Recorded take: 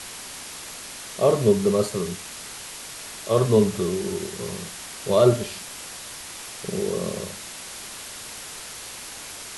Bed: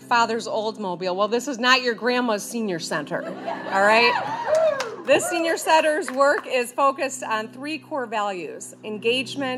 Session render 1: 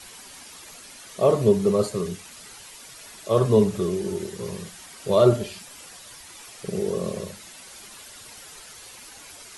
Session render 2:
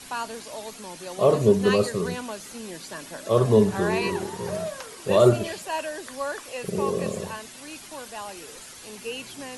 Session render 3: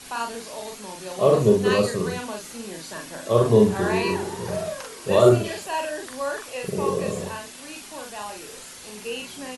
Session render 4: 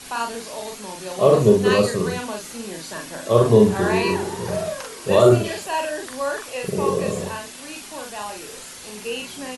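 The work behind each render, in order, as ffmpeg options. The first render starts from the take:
ffmpeg -i in.wav -af "afftdn=noise_reduction=10:noise_floor=-38" out.wav
ffmpeg -i in.wav -i bed.wav -filter_complex "[1:a]volume=-12.5dB[link_01];[0:a][link_01]amix=inputs=2:normalize=0" out.wav
ffmpeg -i in.wav -filter_complex "[0:a]asplit=2[link_01][link_02];[link_02]adelay=43,volume=-3dB[link_03];[link_01][link_03]amix=inputs=2:normalize=0" out.wav
ffmpeg -i in.wav -af "volume=3dB,alimiter=limit=-3dB:level=0:latency=1" out.wav

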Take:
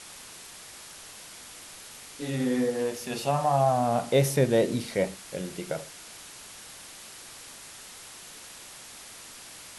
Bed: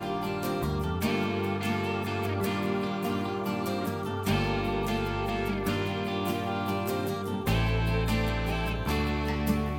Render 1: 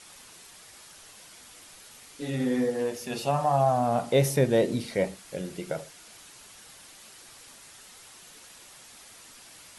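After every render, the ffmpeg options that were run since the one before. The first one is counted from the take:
ffmpeg -i in.wav -af "afftdn=noise_reduction=6:noise_floor=-46" out.wav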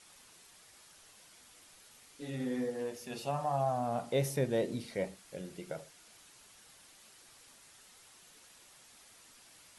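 ffmpeg -i in.wav -af "volume=-9dB" out.wav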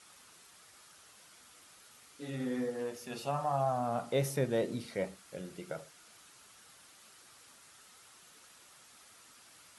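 ffmpeg -i in.wav -af "highpass=58,equalizer=frequency=1300:width_type=o:width=0.43:gain=6" out.wav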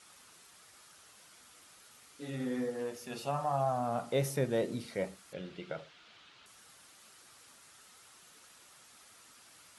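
ffmpeg -i in.wav -filter_complex "[0:a]asettb=1/sr,asplit=3[link_01][link_02][link_03];[link_01]atrim=end=5.334[link_04];[link_02]atrim=start=5.33:end=6.46,asetpts=PTS-STARTPTS,afade=type=in:duration=0.004:curve=qsin,afade=type=out:start_time=1.126:duration=0.004:curve=qsin,lowpass=frequency=3400:width_type=q:width=1.9[link_05];[link_03]atrim=start=6.456[link_06];[link_04][link_05]acrossfade=duration=0.004:curve1=hsin:curve2=qsin[link_07];[link_07][link_06]acrossfade=duration=0.004:curve1=qsin:curve2=hsin" out.wav

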